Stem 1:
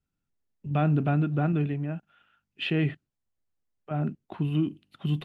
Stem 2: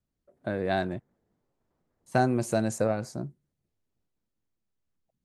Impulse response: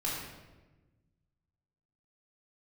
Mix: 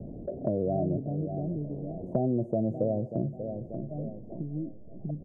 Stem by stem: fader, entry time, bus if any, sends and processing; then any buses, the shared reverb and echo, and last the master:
-2.5 dB, 0.00 s, no send, no echo send, auto duck -14 dB, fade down 1.95 s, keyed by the second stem
-2.0 dB, 0.00 s, no send, echo send -14.5 dB, level flattener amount 50%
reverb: none
echo: feedback delay 587 ms, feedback 29%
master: elliptic low-pass 660 Hz, stop band 50 dB; three bands compressed up and down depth 70%

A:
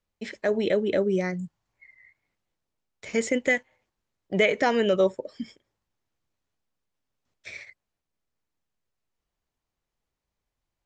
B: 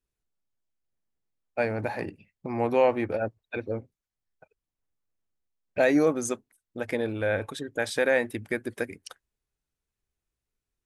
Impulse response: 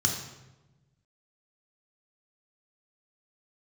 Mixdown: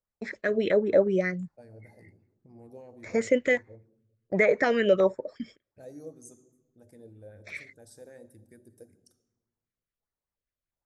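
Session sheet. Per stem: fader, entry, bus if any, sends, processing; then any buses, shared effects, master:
-2.0 dB, 0.00 s, no send, gate -47 dBFS, range -9 dB; treble shelf 7 kHz -11 dB; LFO notch square 1.4 Hz 870–3000 Hz
-19.5 dB, 0.00 s, send -16.5 dB, FFT filter 290 Hz 0 dB, 2.3 kHz -25 dB, 7.6 kHz +6 dB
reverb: on, RT60 1.1 s, pre-delay 3 ms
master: sweeping bell 5.1 Hz 500–2000 Hz +9 dB

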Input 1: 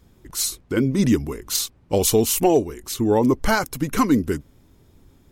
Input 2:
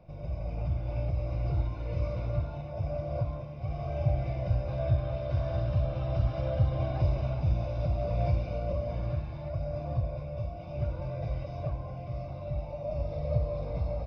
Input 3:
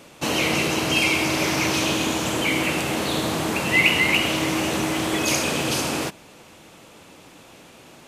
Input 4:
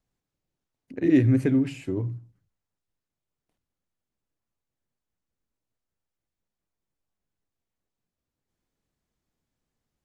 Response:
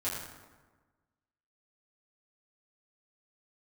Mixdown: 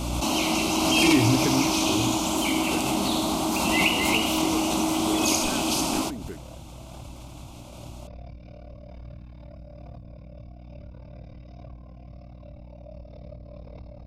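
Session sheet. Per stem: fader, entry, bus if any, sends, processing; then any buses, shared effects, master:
-13.5 dB, 2.00 s, no send, compression, threshold -19 dBFS, peak gain reduction 7.5 dB
-9.0 dB, 0.00 s, no send, treble shelf 2 kHz +8.5 dB; compression, threshold -29 dBFS, peak gain reduction 9.5 dB; AM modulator 37 Hz, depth 90%
+1.0 dB, 0.00 s, no send, treble shelf 11 kHz -3.5 dB; static phaser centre 470 Hz, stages 6
-3.0 dB, 0.00 s, no send, none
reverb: none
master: hum 60 Hz, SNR 18 dB; swell ahead of each attack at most 22 dB/s

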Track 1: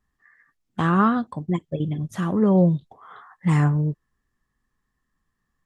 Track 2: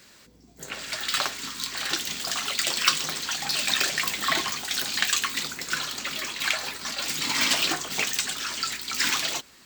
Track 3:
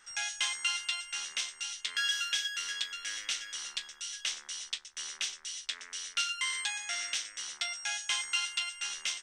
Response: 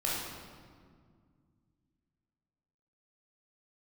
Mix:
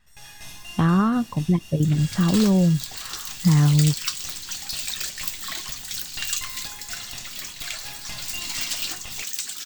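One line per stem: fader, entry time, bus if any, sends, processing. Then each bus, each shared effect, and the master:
+0.5 dB, 0.00 s, bus A, no send, none
-9.5 dB, 1.20 s, no bus, no send, tilt EQ +2 dB/octave; random flutter of the level, depth 55%
-6.5 dB, 0.00 s, bus A, send -9.5 dB, comb filter that takes the minimum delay 1.1 ms; auto duck -13 dB, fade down 0.25 s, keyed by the first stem
bus A: 0.0 dB, low-pass 4 kHz; compression, threshold -20 dBFS, peak gain reduction 8 dB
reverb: on, RT60 2.0 s, pre-delay 15 ms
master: tone controls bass +8 dB, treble +6 dB

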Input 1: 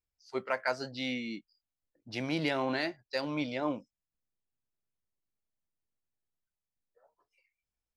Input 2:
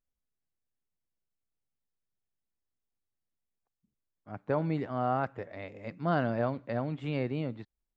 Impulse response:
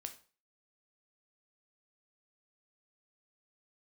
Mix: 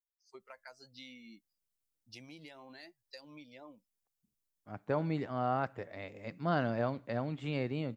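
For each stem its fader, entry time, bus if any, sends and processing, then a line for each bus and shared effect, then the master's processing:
-9.5 dB, 0.00 s, no send, expander on every frequency bin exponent 1.5; compression 8:1, threshold -40 dBFS, peak gain reduction 13 dB
-4.0 dB, 0.40 s, send -15 dB, none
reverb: on, RT60 0.40 s, pre-delay 5 ms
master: treble shelf 4.3 kHz +10.5 dB

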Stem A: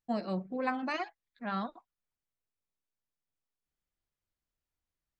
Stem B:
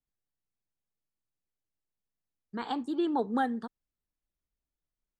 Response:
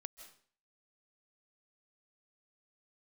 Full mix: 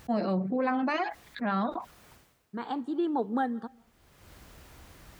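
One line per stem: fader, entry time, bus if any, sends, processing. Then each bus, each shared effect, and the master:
+2.5 dB, 0.00 s, send -21.5 dB, level flattener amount 70%; auto duck -24 dB, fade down 0.40 s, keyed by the second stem
-1.5 dB, 0.00 s, send -7 dB, none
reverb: on, RT60 0.50 s, pre-delay 120 ms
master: high-pass 46 Hz; treble shelf 2.8 kHz -9 dB

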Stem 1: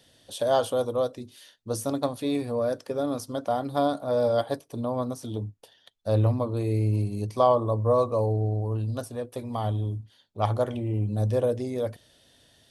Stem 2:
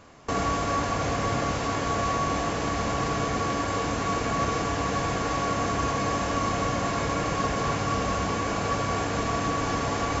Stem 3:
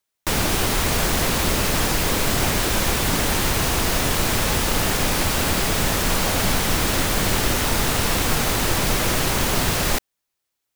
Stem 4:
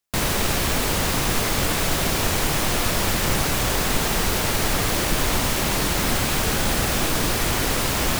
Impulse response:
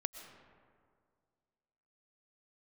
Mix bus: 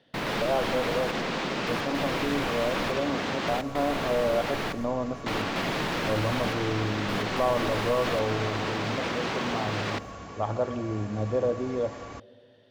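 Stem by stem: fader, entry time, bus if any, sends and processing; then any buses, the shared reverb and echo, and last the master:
-2.5 dB, 0.00 s, bus A, send -7.5 dB, treble shelf 5.2 kHz -11.5 dB
-14.5 dB, 2.00 s, no bus, no send, none
-6.0 dB, 0.00 s, muted 3.59–5.26 s, bus A, send -20 dB, high-pass 130 Hz 24 dB/octave
-8.0 dB, 0.00 s, bus A, send -8 dB, trance gate ".xxxxxxx....x" 108 bpm -24 dB
bus A: 0.0 dB, band-pass 130–4200 Hz; peak limiter -21 dBFS, peak gain reduction 11 dB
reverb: on, RT60 2.1 s, pre-delay 80 ms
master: treble shelf 9.3 kHz -9 dB

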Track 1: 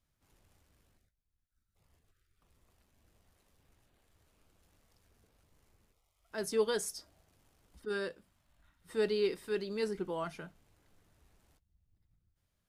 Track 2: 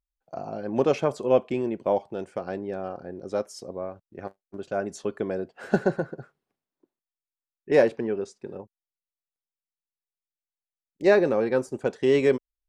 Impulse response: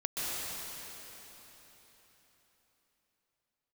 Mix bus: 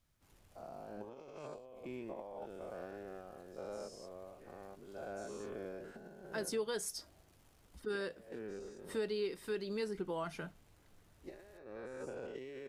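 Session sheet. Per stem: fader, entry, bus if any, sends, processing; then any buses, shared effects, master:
+3.0 dB, 0.00 s, no send, none
-16.0 dB, 0.35 s, no send, every event in the spectrogram widened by 240 ms; compressor with a negative ratio -21 dBFS, ratio -0.5; auto duck -9 dB, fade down 0.85 s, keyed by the first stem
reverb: none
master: compression 3:1, threshold -37 dBFS, peak gain reduction 11.5 dB

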